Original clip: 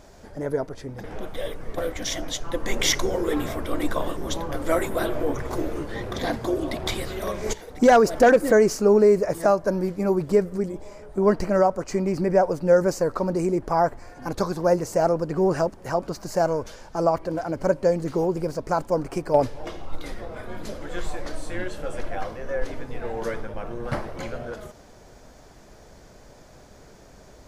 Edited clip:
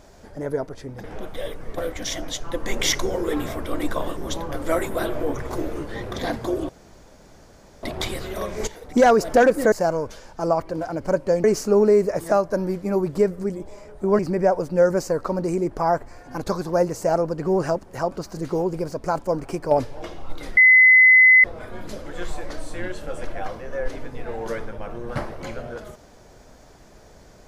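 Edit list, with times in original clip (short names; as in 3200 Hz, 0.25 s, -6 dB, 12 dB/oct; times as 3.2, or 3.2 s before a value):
6.69 insert room tone 1.14 s
11.33–12.1 cut
16.28–18 move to 8.58
20.2 add tone 2030 Hz -8.5 dBFS 0.87 s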